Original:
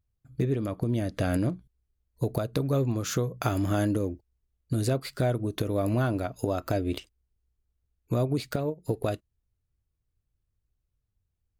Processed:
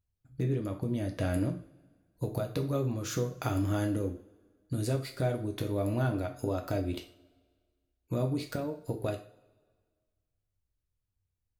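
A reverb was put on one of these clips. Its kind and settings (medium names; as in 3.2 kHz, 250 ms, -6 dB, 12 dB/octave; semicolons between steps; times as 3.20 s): two-slope reverb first 0.4 s, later 1.7 s, from -22 dB, DRR 3 dB; trim -6 dB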